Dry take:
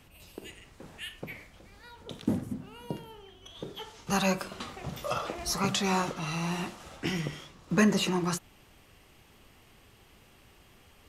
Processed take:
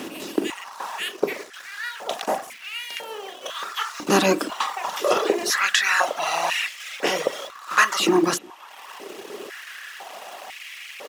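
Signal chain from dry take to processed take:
compressor on every frequency bin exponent 0.6
reverb reduction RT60 1.3 s
in parallel at −8 dB: bit reduction 7 bits
on the sum: far-end echo of a speakerphone 350 ms, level −25 dB
high-pass on a step sequencer 2 Hz 300–2,200 Hz
level +3 dB

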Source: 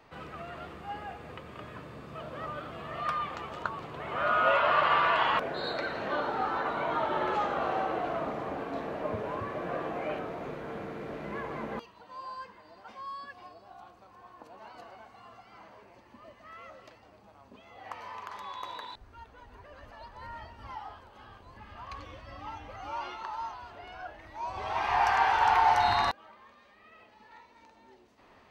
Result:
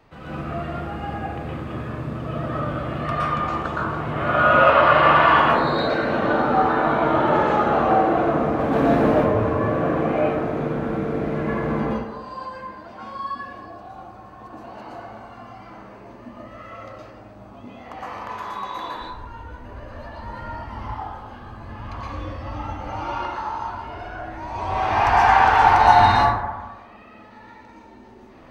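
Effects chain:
low-shelf EQ 280 Hz +8.5 dB
0:08.59–0:09.11: leveller curve on the samples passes 2
dense smooth reverb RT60 1.2 s, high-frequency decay 0.35×, pre-delay 105 ms, DRR −8.5 dB

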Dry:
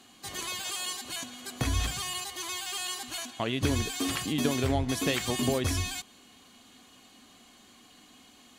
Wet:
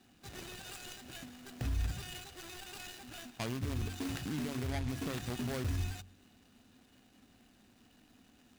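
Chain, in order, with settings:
running median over 41 samples
hum removal 46.57 Hz, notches 7
brickwall limiter −28 dBFS, peak gain reduction 11.5 dB
guitar amp tone stack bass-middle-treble 5-5-5
level +15.5 dB

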